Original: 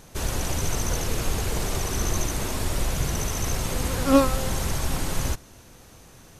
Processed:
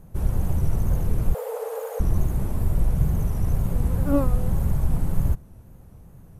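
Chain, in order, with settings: wow and flutter 91 cents; in parallel at -8 dB: hard clipper -14 dBFS, distortion -16 dB; 1.34–2.00 s: on the sum: frequency shift +430 Hz; FFT filter 180 Hz 0 dB, 270 Hz -9 dB, 820 Hz -12 dB, 3.9 kHz -27 dB, 6 kHz -28 dB, 13 kHz -12 dB; trim +3 dB

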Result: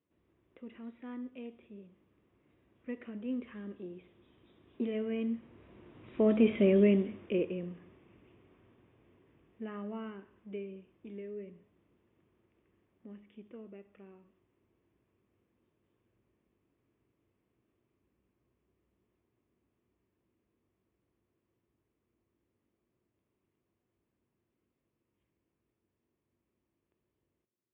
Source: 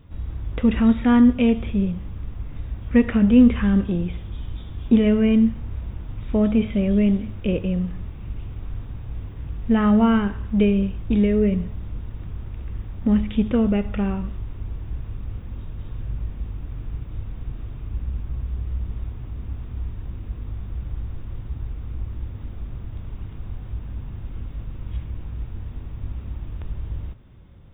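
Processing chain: Doppler pass-by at 6.65 s, 8 m/s, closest 2.7 m; cabinet simulation 290–3000 Hz, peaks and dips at 360 Hz +7 dB, 820 Hz -6 dB, 1.4 kHz -5 dB

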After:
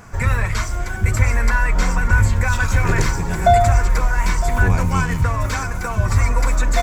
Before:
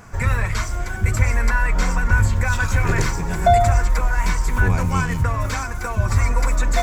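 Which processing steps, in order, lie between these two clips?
delay 960 ms -14.5 dB; trim +1.5 dB

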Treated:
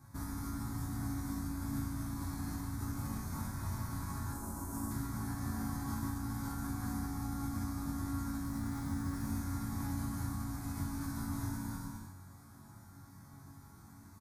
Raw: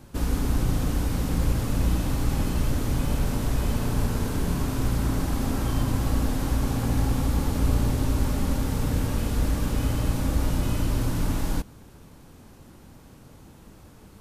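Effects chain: 8.44–9.14 s: median filter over 3 samples; static phaser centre 1.2 kHz, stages 4; bouncing-ball echo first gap 150 ms, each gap 0.8×, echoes 5; peak limiter -16.5 dBFS, peak gain reduction 7 dB; 4.32–4.91 s: graphic EQ 125/500/2000/4000/8000 Hz -11/+5/-9/-11/+5 dB; compression 4:1, threshold -26 dBFS, peak gain reduction 6 dB; high-pass 43 Hz; band-stop 7.6 kHz, Q 19; chord resonator F#2 minor, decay 0.59 s; trim +11 dB

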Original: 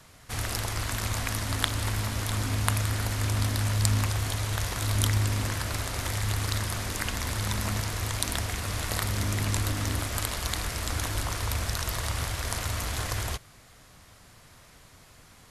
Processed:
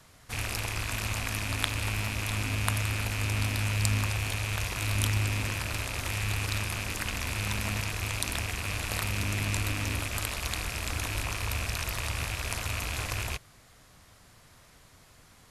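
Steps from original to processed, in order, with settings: rattle on loud lows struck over -35 dBFS, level -20 dBFS; trim -3 dB

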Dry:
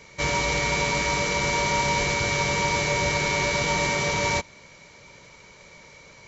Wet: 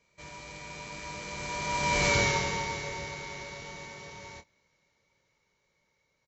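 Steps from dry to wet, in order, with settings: Doppler pass-by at 2.13 s, 9 m/s, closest 1.5 m; doubling 26 ms -10 dB

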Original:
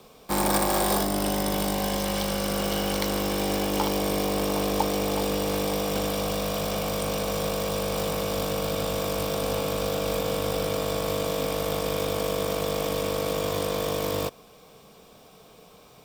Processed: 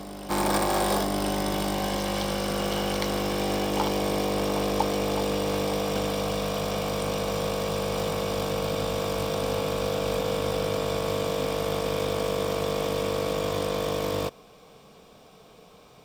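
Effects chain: treble shelf 9.6 kHz -10.5 dB; on a send: reverse echo 1032 ms -12.5 dB

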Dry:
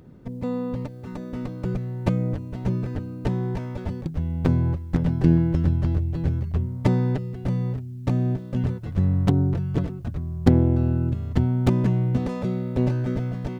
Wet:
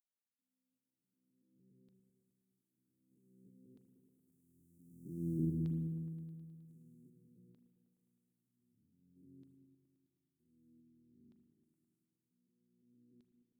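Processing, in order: spectrogram pixelated in time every 400 ms; Doppler pass-by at 5.32 s, 10 m/s, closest 1.5 m; inverse Chebyshev band-stop 840–2900 Hz, stop band 70 dB; peaking EQ 450 Hz +5.5 dB 1.5 oct; static phaser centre 1.7 kHz, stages 4; LFO high-pass saw down 0.53 Hz 450–3900 Hz; delay with an opening low-pass 105 ms, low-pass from 200 Hz, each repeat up 1 oct, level -6 dB; spring tank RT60 1.5 s, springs 37 ms, DRR 7.5 dB; trim +6 dB

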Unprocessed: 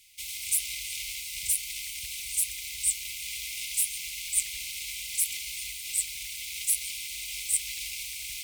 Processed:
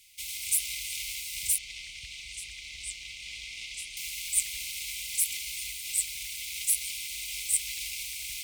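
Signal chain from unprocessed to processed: 1.58–3.97 s: distance through air 110 m

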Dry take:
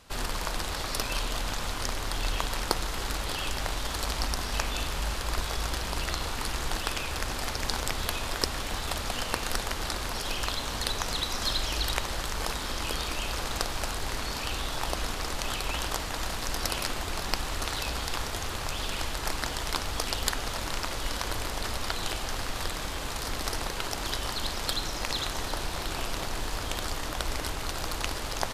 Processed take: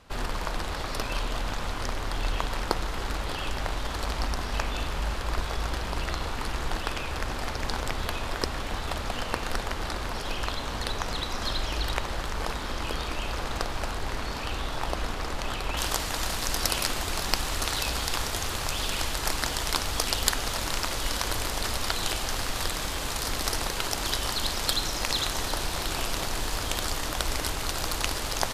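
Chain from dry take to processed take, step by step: treble shelf 3.9 kHz -10 dB, from 15.77 s +4 dB; trim +2 dB

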